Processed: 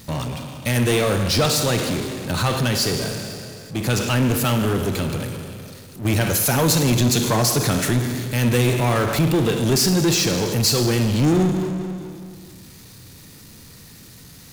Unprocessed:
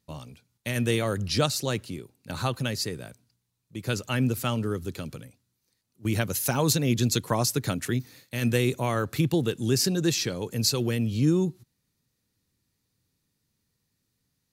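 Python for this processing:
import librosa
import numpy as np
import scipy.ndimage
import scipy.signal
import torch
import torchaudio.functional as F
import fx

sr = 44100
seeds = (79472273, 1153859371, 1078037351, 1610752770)

y = fx.rev_schroeder(x, sr, rt60_s=1.3, comb_ms=33, drr_db=7.0)
y = fx.power_curve(y, sr, exponent=0.5)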